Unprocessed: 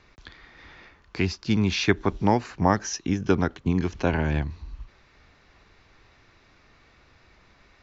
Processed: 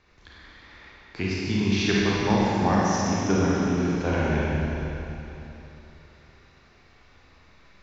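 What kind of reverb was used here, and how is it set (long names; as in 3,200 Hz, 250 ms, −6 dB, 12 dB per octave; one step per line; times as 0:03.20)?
four-comb reverb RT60 3.2 s, combs from 31 ms, DRR −6.5 dB
level −6 dB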